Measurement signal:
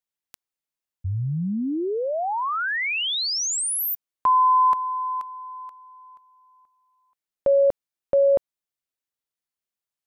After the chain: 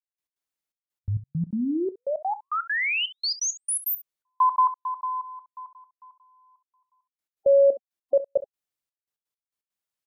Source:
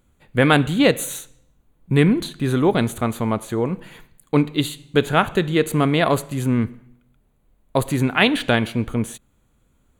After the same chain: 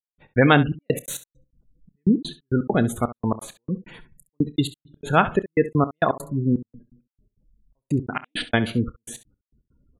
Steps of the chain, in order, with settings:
gate on every frequency bin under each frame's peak −20 dB strong
gate pattern "..x.xxxx..x.x" 167 BPM −60 dB
ambience of single reflections 29 ms −17.5 dB, 67 ms −15.5 dB

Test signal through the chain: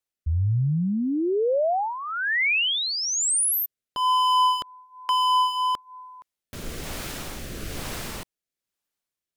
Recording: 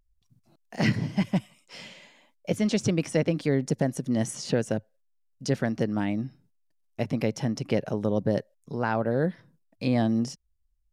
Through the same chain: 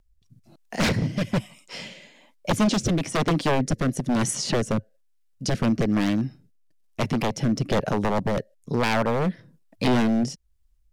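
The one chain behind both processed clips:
wave folding −23 dBFS
rotating-speaker cabinet horn 1.1 Hz
level +9 dB

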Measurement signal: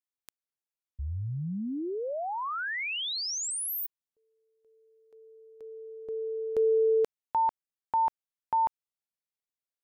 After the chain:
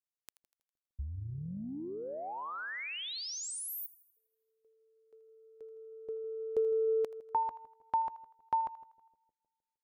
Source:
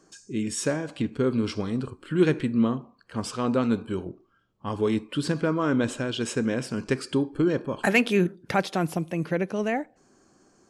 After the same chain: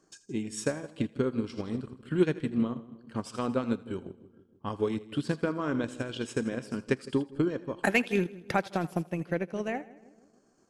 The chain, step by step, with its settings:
echo with a time of its own for lows and highs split 570 Hz, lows 155 ms, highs 81 ms, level −12 dB
transient designer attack +6 dB, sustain −7 dB
level −7.5 dB

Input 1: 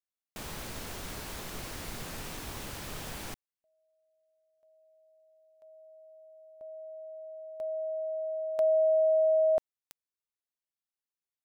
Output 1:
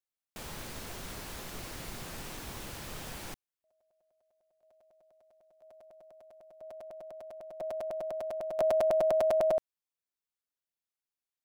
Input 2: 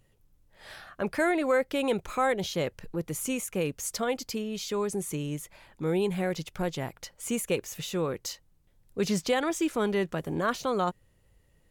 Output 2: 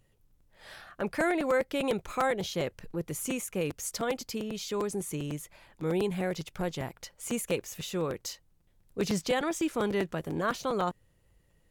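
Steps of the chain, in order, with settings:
regular buffer underruns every 0.10 s, samples 256, repeat, from 0:00.30
level −2 dB

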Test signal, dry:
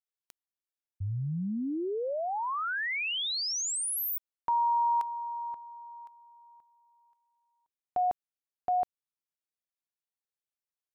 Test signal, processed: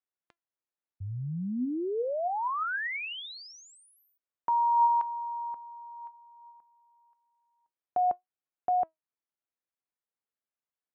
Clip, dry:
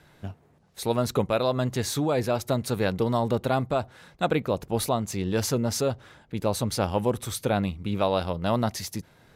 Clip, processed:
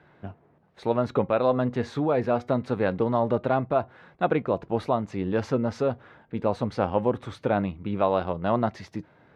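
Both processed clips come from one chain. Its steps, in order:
low-pass filter 1,900 Hz 12 dB per octave
flanger 0.24 Hz, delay 2.6 ms, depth 1.8 ms, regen +87%
high-pass filter 150 Hz 6 dB per octave
level +6.5 dB

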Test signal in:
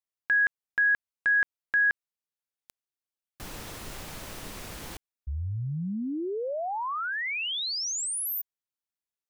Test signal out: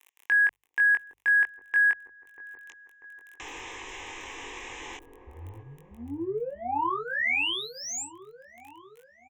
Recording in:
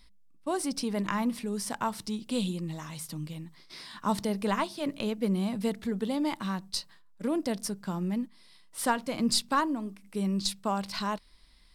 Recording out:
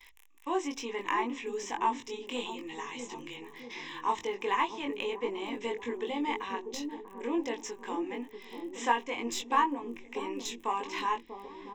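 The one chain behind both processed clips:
mains-hum notches 50/100/150 Hz
downsampling to 16,000 Hz
surface crackle 14 per second −47 dBFS
in parallel at −8 dB: soft clipping −29 dBFS
on the sum: bass and treble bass −5 dB, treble −2 dB
noise gate with hold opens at −48 dBFS, hold 250 ms, range −21 dB
low-shelf EQ 400 Hz −9 dB
phaser with its sweep stopped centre 930 Hz, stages 8
double-tracking delay 21 ms −3 dB
delay with a low-pass on its return 641 ms, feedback 50%, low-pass 450 Hz, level −4 dB
one half of a high-frequency compander encoder only
level +2 dB

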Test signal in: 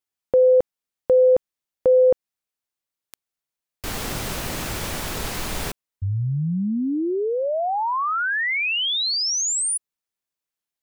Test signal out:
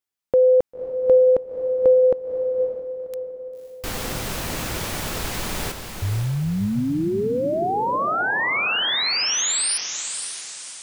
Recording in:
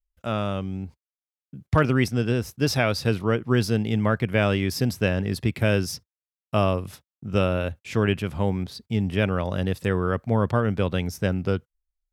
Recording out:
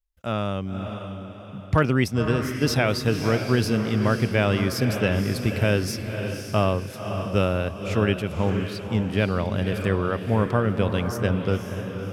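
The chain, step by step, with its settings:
feedback delay with all-pass diffusion 539 ms, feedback 44%, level −7 dB

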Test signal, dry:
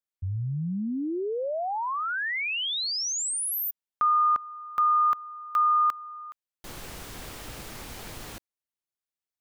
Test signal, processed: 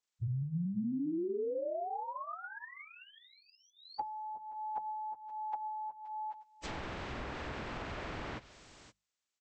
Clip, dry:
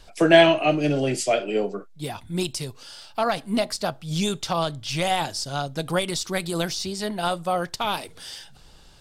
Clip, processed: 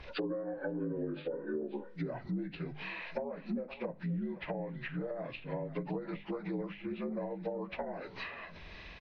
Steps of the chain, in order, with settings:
partials spread apart or drawn together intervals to 78%
downward compressor 12 to 1, threshold −36 dBFS
mains-hum notches 50/100/150/200 Hz
single-tap delay 521 ms −18 dB
treble cut that deepens with the level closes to 520 Hz, closed at −34.5 dBFS
level +3.5 dB

